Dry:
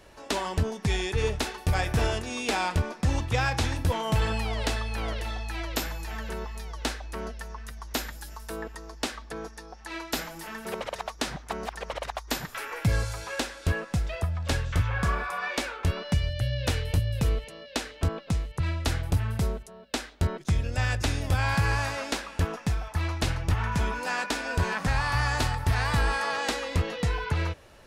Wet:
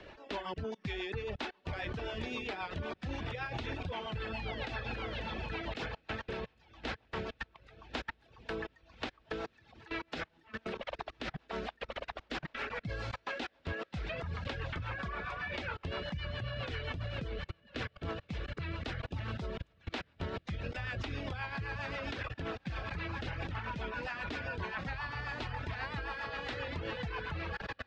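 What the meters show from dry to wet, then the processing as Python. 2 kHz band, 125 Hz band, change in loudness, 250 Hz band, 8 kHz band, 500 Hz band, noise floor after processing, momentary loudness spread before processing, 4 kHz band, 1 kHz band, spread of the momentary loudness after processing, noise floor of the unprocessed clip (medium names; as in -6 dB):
-7.5 dB, -13.5 dB, -10.5 dB, -9.0 dB, -24.5 dB, -7.5 dB, -69 dBFS, 10 LU, -9.5 dB, -10.0 dB, 4 LU, -47 dBFS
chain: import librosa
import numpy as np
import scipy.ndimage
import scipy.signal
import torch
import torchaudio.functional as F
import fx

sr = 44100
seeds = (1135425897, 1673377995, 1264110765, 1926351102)

y = fx.ladder_lowpass(x, sr, hz=4400.0, resonance_pct=20)
y = fx.low_shelf(y, sr, hz=110.0, db=-9.5)
y = fx.echo_diffused(y, sr, ms=1431, feedback_pct=65, wet_db=-10)
y = fx.level_steps(y, sr, step_db=21)
y = fx.dereverb_blind(y, sr, rt60_s=0.69)
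y = fx.rotary(y, sr, hz=7.5)
y = fx.band_squash(y, sr, depth_pct=40)
y = y * librosa.db_to_amplitude(7.0)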